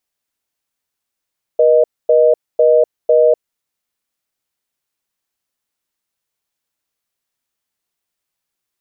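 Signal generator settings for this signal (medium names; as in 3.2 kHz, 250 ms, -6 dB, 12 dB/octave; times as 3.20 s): call progress tone reorder tone, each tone -10 dBFS 1.94 s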